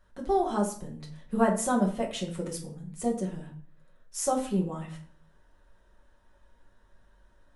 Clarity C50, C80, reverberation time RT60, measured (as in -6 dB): 9.0 dB, 13.0 dB, 0.50 s